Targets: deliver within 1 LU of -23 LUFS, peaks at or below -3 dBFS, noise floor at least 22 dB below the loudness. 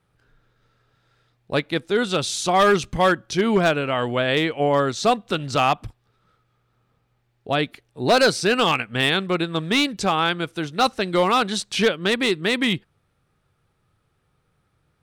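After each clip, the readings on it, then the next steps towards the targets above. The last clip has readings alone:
clipped 0.5%; flat tops at -10.5 dBFS; loudness -21.0 LUFS; peak -10.5 dBFS; loudness target -23.0 LUFS
-> clip repair -10.5 dBFS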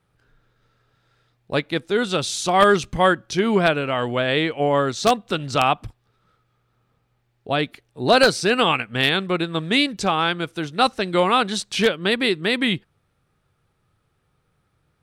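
clipped 0.0%; loudness -20.5 LUFS; peak -1.5 dBFS; loudness target -23.0 LUFS
-> gain -2.5 dB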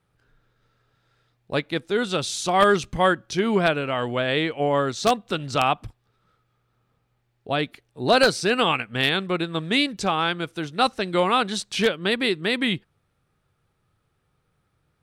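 loudness -23.0 LUFS; peak -4.0 dBFS; noise floor -71 dBFS

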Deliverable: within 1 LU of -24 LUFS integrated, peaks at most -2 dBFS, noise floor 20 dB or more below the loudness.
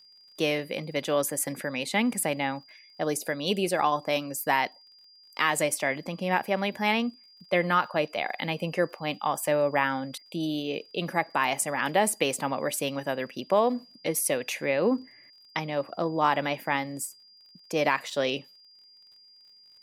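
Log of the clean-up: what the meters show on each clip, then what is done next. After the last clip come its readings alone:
ticks 42/s; steady tone 4800 Hz; tone level -53 dBFS; loudness -28.0 LUFS; peak -9.5 dBFS; loudness target -24.0 LUFS
-> de-click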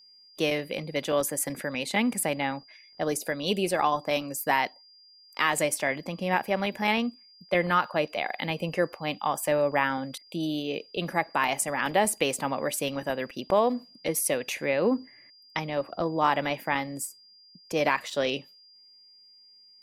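ticks 0.15/s; steady tone 4800 Hz; tone level -53 dBFS
-> notch 4800 Hz, Q 30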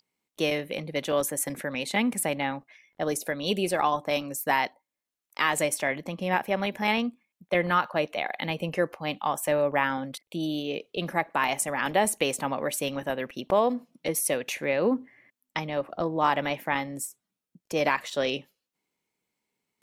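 steady tone none; loudness -28.0 LUFS; peak -9.5 dBFS; loudness target -24.0 LUFS
-> gain +4 dB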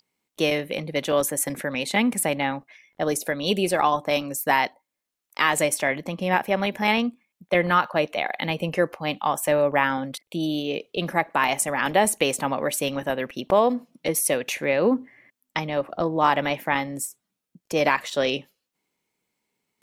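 loudness -24.0 LUFS; peak -5.5 dBFS; noise floor -84 dBFS

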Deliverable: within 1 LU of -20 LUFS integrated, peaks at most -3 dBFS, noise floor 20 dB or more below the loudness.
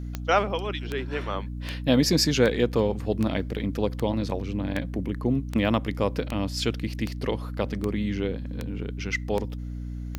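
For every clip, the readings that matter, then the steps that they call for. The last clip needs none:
clicks 14; hum 60 Hz; harmonics up to 300 Hz; hum level -31 dBFS; loudness -27.0 LUFS; peak -7.5 dBFS; loudness target -20.0 LUFS
-> de-click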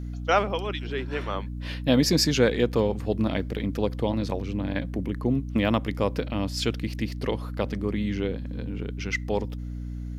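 clicks 0; hum 60 Hz; harmonics up to 300 Hz; hum level -31 dBFS
-> de-hum 60 Hz, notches 5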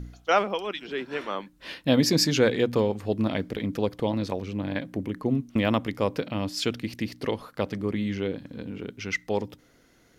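hum none; loudness -27.5 LUFS; peak -8.0 dBFS; loudness target -20.0 LUFS
-> gain +7.5 dB; limiter -3 dBFS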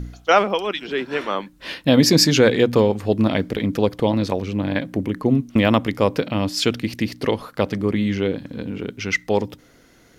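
loudness -20.5 LUFS; peak -3.0 dBFS; noise floor -53 dBFS

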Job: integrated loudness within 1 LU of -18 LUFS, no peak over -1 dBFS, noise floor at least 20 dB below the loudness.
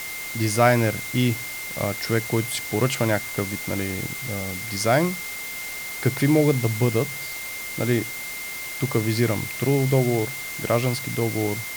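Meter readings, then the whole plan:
steady tone 2100 Hz; tone level -33 dBFS; noise floor -33 dBFS; noise floor target -44 dBFS; loudness -24.0 LUFS; peak -4.5 dBFS; loudness target -18.0 LUFS
-> notch 2100 Hz, Q 30; noise print and reduce 11 dB; gain +6 dB; limiter -1 dBFS

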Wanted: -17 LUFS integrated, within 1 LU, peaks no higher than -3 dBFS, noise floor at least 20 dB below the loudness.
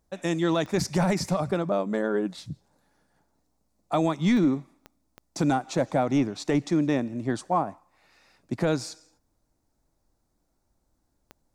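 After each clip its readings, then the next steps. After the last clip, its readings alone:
clicks 5; loudness -26.5 LUFS; peak -15.0 dBFS; loudness target -17.0 LUFS
-> de-click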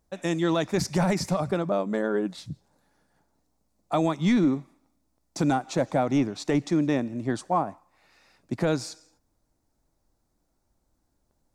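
clicks 0; loudness -26.5 LUFS; peak -15.0 dBFS; loudness target -17.0 LUFS
-> gain +9.5 dB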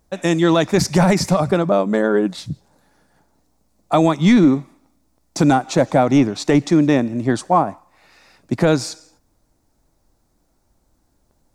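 loudness -17.0 LUFS; peak -5.5 dBFS; noise floor -65 dBFS

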